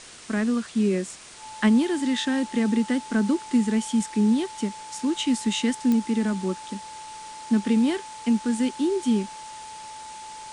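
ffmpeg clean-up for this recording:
-af "adeclick=t=4,bandreject=f=870:w=30,afftdn=nr=29:nf=-40"

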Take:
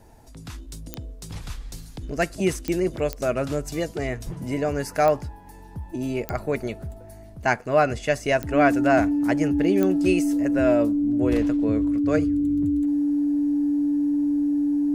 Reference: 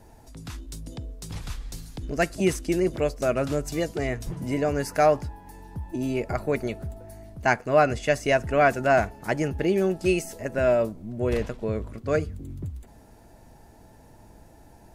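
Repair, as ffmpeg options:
-af "adeclick=t=4,bandreject=f=290:w=30"

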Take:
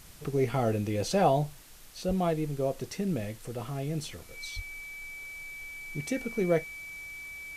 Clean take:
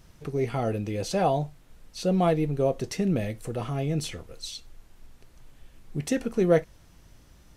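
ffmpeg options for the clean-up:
-filter_complex "[0:a]bandreject=f=2.3k:w=30,asplit=3[a][b][c];[a]afade=t=out:st=2.07:d=0.02[d];[b]highpass=f=140:w=0.5412,highpass=f=140:w=1.3066,afade=t=in:st=2.07:d=0.02,afade=t=out:st=2.19:d=0.02[e];[c]afade=t=in:st=2.19:d=0.02[f];[d][e][f]amix=inputs=3:normalize=0,asplit=3[g][h][i];[g]afade=t=out:st=4.55:d=0.02[j];[h]highpass=f=140:w=0.5412,highpass=f=140:w=1.3066,afade=t=in:st=4.55:d=0.02,afade=t=out:st=4.67:d=0.02[k];[i]afade=t=in:st=4.67:d=0.02[l];[j][k][l]amix=inputs=3:normalize=0,afwtdn=0.0022,asetnsamples=n=441:p=0,asendcmd='1.62 volume volume 5.5dB',volume=0dB"

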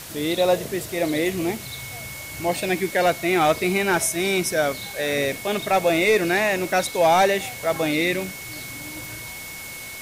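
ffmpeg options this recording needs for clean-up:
-af "bandreject=f=2.2k:w=30,afwtdn=0.014"

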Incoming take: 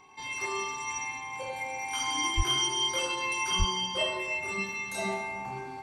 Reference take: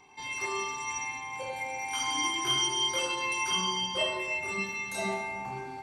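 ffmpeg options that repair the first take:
-filter_complex "[0:a]bandreject=f=1.1k:w=30,asplit=3[a][b][c];[a]afade=t=out:st=2.36:d=0.02[d];[b]highpass=f=140:w=0.5412,highpass=f=140:w=1.3066,afade=t=in:st=2.36:d=0.02,afade=t=out:st=2.48:d=0.02[e];[c]afade=t=in:st=2.48:d=0.02[f];[d][e][f]amix=inputs=3:normalize=0,asplit=3[g][h][i];[g]afade=t=out:st=3.58:d=0.02[j];[h]highpass=f=140:w=0.5412,highpass=f=140:w=1.3066,afade=t=in:st=3.58:d=0.02,afade=t=out:st=3.7:d=0.02[k];[i]afade=t=in:st=3.7:d=0.02[l];[j][k][l]amix=inputs=3:normalize=0"

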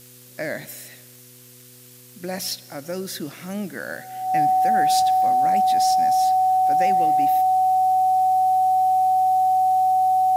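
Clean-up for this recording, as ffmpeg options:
-af "adeclick=t=4,bandreject=f=123.9:t=h:w=4,bandreject=f=247.8:t=h:w=4,bandreject=f=371.7:t=h:w=4,bandreject=f=495.6:t=h:w=4,bandreject=f=750:w=30,afftdn=nr=21:nf=-47"

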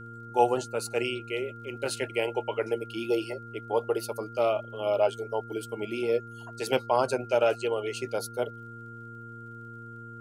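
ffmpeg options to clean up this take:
-af "adeclick=t=4,bandreject=f=116:t=h:w=4,bandreject=f=232:t=h:w=4,bandreject=f=348:t=h:w=4,bandreject=f=464:t=h:w=4,bandreject=f=1.4k:w=30"

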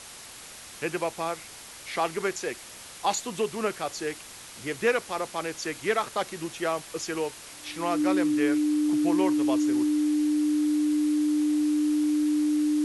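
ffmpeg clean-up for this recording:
-af "bandreject=f=300:w=30,afwtdn=0.0079"

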